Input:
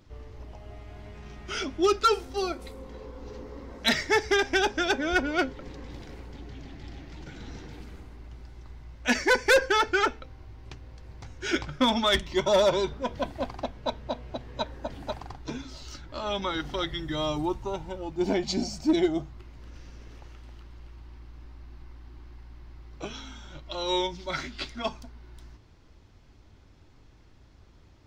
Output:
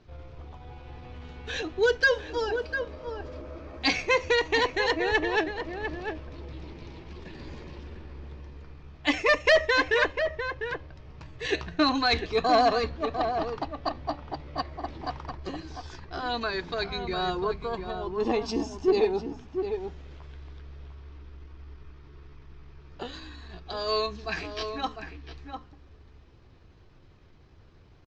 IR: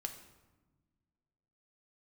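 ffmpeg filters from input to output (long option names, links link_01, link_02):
-filter_complex "[0:a]lowpass=frequency=4200:width=0.5412,lowpass=frequency=4200:width=1.3066,bandreject=frequency=50:width_type=h:width=6,bandreject=frequency=100:width_type=h:width=6,bandreject=frequency=150:width_type=h:width=6,asetrate=52444,aresample=44100,atempo=0.840896,asplit=2[link_01][link_02];[link_02]adelay=699.7,volume=-7dB,highshelf=frequency=4000:gain=-15.7[link_03];[link_01][link_03]amix=inputs=2:normalize=0"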